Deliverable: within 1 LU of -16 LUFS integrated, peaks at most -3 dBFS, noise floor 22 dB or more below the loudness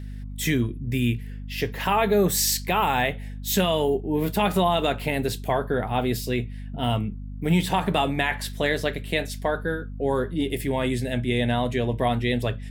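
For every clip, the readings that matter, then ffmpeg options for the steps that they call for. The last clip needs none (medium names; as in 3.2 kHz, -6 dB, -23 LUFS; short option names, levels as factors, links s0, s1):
hum 50 Hz; highest harmonic 250 Hz; hum level -32 dBFS; loudness -25.0 LUFS; peak level -9.5 dBFS; loudness target -16.0 LUFS
-> -af "bandreject=f=50:t=h:w=6,bandreject=f=100:t=h:w=6,bandreject=f=150:t=h:w=6,bandreject=f=200:t=h:w=6,bandreject=f=250:t=h:w=6"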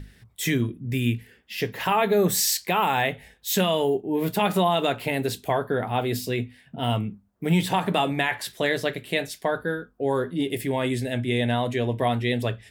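hum not found; loudness -25.0 LUFS; peak level -10.0 dBFS; loudness target -16.0 LUFS
-> -af "volume=2.82,alimiter=limit=0.708:level=0:latency=1"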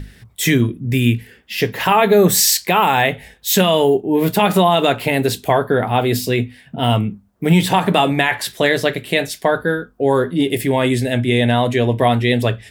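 loudness -16.5 LUFS; peak level -3.0 dBFS; noise floor -50 dBFS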